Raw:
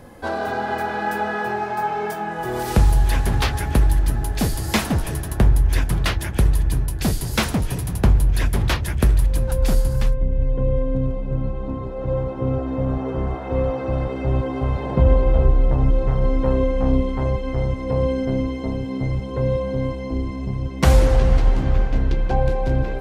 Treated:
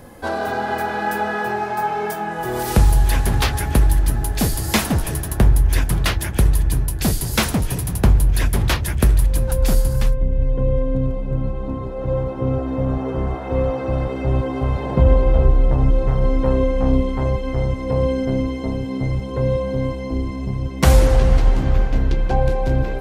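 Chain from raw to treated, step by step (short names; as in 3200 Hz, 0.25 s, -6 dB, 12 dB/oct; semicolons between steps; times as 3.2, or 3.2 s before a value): high shelf 8400 Hz +7 dB; gain +1.5 dB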